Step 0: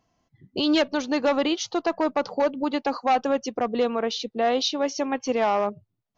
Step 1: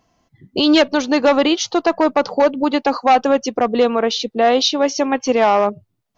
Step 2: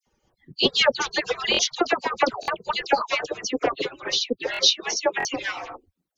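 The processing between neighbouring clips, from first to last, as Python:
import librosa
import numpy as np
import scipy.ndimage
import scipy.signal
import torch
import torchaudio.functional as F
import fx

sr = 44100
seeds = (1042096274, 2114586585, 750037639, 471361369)

y1 = fx.peak_eq(x, sr, hz=120.0, db=-2.5, octaves=1.1)
y1 = y1 * librosa.db_to_amplitude(8.5)
y2 = fx.hpss_only(y1, sr, part='percussive')
y2 = fx.dispersion(y2, sr, late='lows', ms=69.0, hz=2200.0)
y2 = fx.buffer_glitch(y2, sr, at_s=(1.52, 2.41, 4.52, 5.18), block=1024, repeats=2)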